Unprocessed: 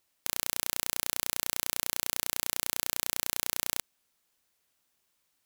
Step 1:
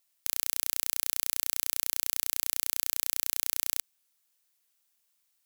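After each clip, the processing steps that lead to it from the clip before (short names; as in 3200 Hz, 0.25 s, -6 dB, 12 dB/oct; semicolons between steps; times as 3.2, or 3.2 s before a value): tilt +2.5 dB/oct; gain -7 dB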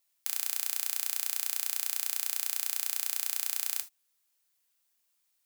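non-linear reverb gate 0.1 s falling, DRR 6.5 dB; gain -2 dB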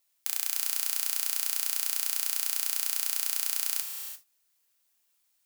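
non-linear reverb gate 0.37 s rising, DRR 6 dB; gain +2 dB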